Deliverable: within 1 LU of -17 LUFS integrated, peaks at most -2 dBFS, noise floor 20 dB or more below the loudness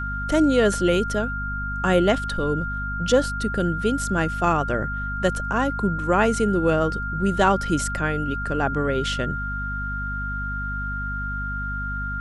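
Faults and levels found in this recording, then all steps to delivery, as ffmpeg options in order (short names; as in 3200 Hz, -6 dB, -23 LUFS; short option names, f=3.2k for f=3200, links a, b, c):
hum 50 Hz; harmonics up to 250 Hz; hum level -28 dBFS; steady tone 1400 Hz; tone level -28 dBFS; loudness -23.5 LUFS; peak -6.0 dBFS; loudness target -17.0 LUFS
-> -af "bandreject=f=50:t=h:w=6,bandreject=f=100:t=h:w=6,bandreject=f=150:t=h:w=6,bandreject=f=200:t=h:w=6,bandreject=f=250:t=h:w=6"
-af "bandreject=f=1.4k:w=30"
-af "volume=6.5dB,alimiter=limit=-2dB:level=0:latency=1"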